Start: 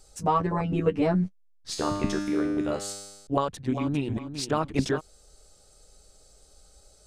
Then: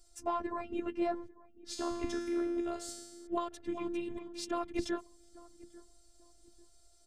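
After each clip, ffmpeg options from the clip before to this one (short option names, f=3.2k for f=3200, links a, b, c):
-filter_complex "[0:a]afftfilt=real='hypot(re,im)*cos(PI*b)':imag='0':win_size=512:overlap=0.75,asplit=2[a][b];[b]adelay=844,lowpass=f=930:p=1,volume=-19.5dB,asplit=2[c][d];[d]adelay=844,lowpass=f=930:p=1,volume=0.36,asplit=2[e][f];[f]adelay=844,lowpass=f=930:p=1,volume=0.36[g];[a][c][e][g]amix=inputs=4:normalize=0,volume=-5.5dB"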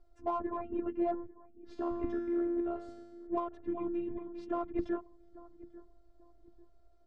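-filter_complex "[0:a]lowpass=1.2k,asplit=2[a][b];[b]asoftclip=type=tanh:threshold=-37dB,volume=-9dB[c];[a][c]amix=inputs=2:normalize=0"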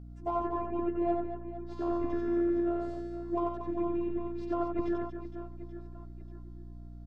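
-af "aecho=1:1:90|234|464.4|833|1423:0.631|0.398|0.251|0.158|0.1,aeval=exprs='val(0)+0.00562*(sin(2*PI*60*n/s)+sin(2*PI*2*60*n/s)/2+sin(2*PI*3*60*n/s)/3+sin(2*PI*4*60*n/s)/4+sin(2*PI*5*60*n/s)/5)':c=same"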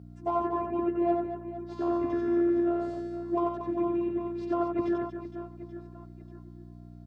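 -af "highpass=92,volume=3.5dB"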